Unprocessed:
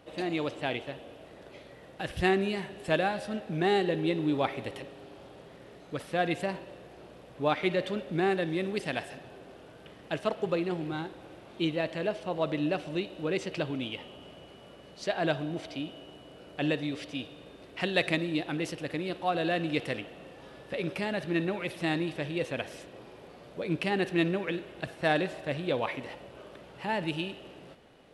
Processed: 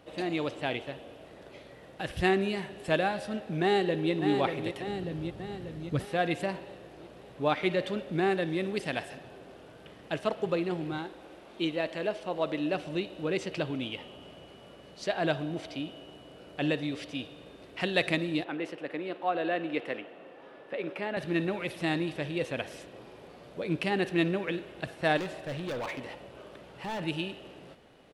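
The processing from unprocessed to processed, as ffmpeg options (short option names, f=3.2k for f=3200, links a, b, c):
-filter_complex "[0:a]asplit=2[a][b];[b]afade=t=in:st=3.62:d=0.01,afade=t=out:st=4.12:d=0.01,aecho=0:1:590|1180|1770|2360|2950|3540|4130:0.473151|0.260233|0.143128|0.0787205|0.0432963|0.023813|0.0130971[c];[a][c]amix=inputs=2:normalize=0,asettb=1/sr,asplit=3[d][e][f];[d]atrim=end=4.874[g];[e]atrim=start=4.87:end=6.05,asetpts=PTS-STARTPTS,afade=t=in:d=0.004:c=qsin,afade=t=out:st=1.176:d=0.004:c=qsin,bass=f=250:g=13,treble=f=4k:g=1[h];[f]atrim=start=6.046[i];[g][h]acrossfade=d=0.004:c1=hsin:c2=qsin[j];[j][i]acrossfade=d=0.004:c1=qsin:c2=hsin,asettb=1/sr,asplit=3[k][l][m];[k]atrim=end=10.984[n];[l]atrim=start=10.98:end=12.73,asetpts=PTS-STARTPTS,afade=t=in:d=0.004:c=qsin,afade=t=out:st=1.746:d=0.004:c=qsin,equalizer=f=110:w=1.5:g=-13[o];[m]atrim=start=12.726[p];[n][o]acrossfade=d=0.004:c1=hsin:c2=qsin[q];[q][p]acrossfade=d=0.004:c1=qsin:c2=hsin,asettb=1/sr,asplit=3[r][s][t];[r]atrim=end=18.444[u];[s]atrim=start=18.44:end=21.17,asetpts=PTS-STARTPTS,afade=t=in:d=0.004:c=qsin,afade=t=out:st=2.726:d=0.004:c=qsin,acrossover=split=230 2900:gain=0.112 1 0.178[v][w][x];[v][w][x]amix=inputs=3:normalize=0[y];[t]atrim=start=21.166[z];[u][y]acrossfade=d=0.004:c1=hsin:c2=qsin[aa];[aa][z]acrossfade=d=0.004:c1=qsin:c2=hsin,asettb=1/sr,asplit=3[ab][ac][ad];[ab]atrim=end=25.174[ae];[ac]atrim=start=25.17:end=27,asetpts=PTS-STARTPTS,afade=t=in:d=0.004:c=qsin,afade=t=out:st=1.826:d=0.004:c=qsin,volume=32dB,asoftclip=hard,volume=-32dB[af];[ad]atrim=start=26.996[ag];[ae][af]acrossfade=d=0.004:c1=hsin:c2=qsin[ah];[ah][ag]acrossfade=d=0.004:c1=qsin:c2=hsin"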